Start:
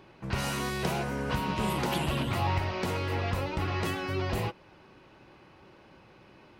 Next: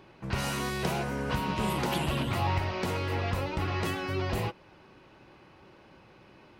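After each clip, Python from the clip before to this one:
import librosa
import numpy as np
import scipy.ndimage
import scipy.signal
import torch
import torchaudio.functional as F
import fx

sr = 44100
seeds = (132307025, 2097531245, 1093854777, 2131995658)

y = x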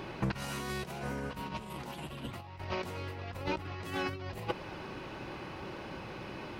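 y = fx.over_compress(x, sr, threshold_db=-38.0, ratio=-0.5)
y = y * 10.0 ** (2.5 / 20.0)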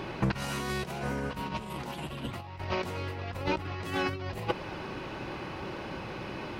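y = fx.high_shelf(x, sr, hz=9900.0, db=-4.0)
y = y * 10.0 ** (4.5 / 20.0)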